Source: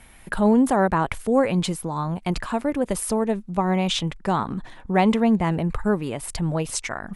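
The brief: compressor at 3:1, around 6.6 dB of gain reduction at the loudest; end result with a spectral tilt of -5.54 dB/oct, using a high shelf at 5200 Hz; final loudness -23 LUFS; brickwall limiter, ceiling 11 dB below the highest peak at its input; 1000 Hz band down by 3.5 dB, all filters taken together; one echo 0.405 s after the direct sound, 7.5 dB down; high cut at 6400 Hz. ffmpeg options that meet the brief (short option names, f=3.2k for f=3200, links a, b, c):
-af "lowpass=6.4k,equalizer=f=1k:t=o:g=-4.5,highshelf=f=5.2k:g=-6.5,acompressor=threshold=-23dB:ratio=3,alimiter=level_in=0.5dB:limit=-24dB:level=0:latency=1,volume=-0.5dB,aecho=1:1:405:0.422,volume=10.5dB"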